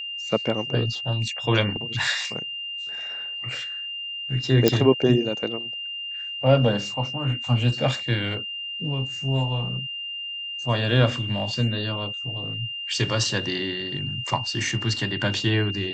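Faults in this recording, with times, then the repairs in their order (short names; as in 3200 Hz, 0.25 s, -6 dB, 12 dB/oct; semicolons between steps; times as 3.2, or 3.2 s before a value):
tone 2800 Hz -30 dBFS
4.68 pop -3 dBFS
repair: de-click; notch 2800 Hz, Q 30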